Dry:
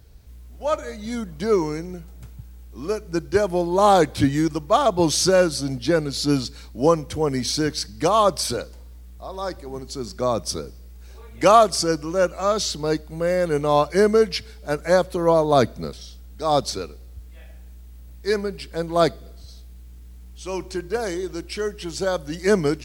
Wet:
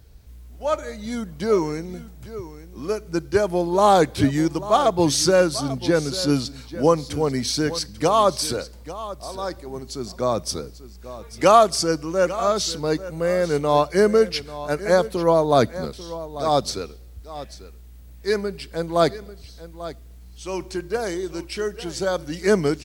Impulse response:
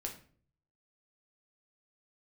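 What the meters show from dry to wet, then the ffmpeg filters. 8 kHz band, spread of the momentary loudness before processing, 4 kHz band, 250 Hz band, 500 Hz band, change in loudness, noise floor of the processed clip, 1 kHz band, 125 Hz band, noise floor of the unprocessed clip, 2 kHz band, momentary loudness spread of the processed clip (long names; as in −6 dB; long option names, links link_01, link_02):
0.0 dB, 15 LU, 0.0 dB, 0.0 dB, 0.0 dB, 0.0 dB, −43 dBFS, 0.0 dB, 0.0 dB, −42 dBFS, 0.0 dB, 18 LU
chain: -af "aecho=1:1:842:0.178"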